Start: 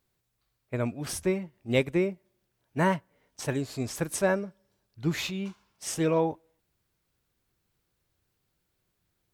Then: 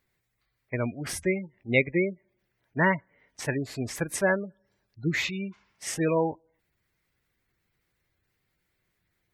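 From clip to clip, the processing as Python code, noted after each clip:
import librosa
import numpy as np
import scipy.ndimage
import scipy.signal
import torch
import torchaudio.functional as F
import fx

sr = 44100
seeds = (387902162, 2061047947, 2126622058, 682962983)

y = fx.spec_gate(x, sr, threshold_db=-25, keep='strong')
y = fx.peak_eq(y, sr, hz=2000.0, db=11.0, octaves=0.56)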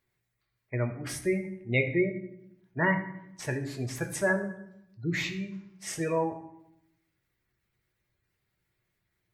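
y = fx.rev_fdn(x, sr, rt60_s=0.79, lf_ratio=1.45, hf_ratio=0.75, size_ms=49.0, drr_db=4.5)
y = F.gain(torch.from_numpy(y), -4.5).numpy()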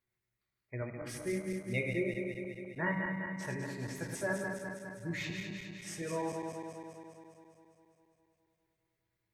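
y = fx.reverse_delay_fb(x, sr, ms=102, feedback_pct=80, wet_db=-5.0)
y = F.gain(torch.from_numpy(y), -9.0).numpy()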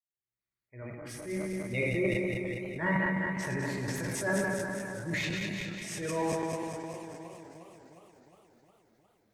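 y = fx.fade_in_head(x, sr, length_s=2.1)
y = fx.transient(y, sr, attack_db=-8, sustain_db=8)
y = fx.echo_warbled(y, sr, ms=356, feedback_pct=63, rate_hz=2.8, cents=92, wet_db=-14.5)
y = F.gain(torch.from_numpy(y), 5.5).numpy()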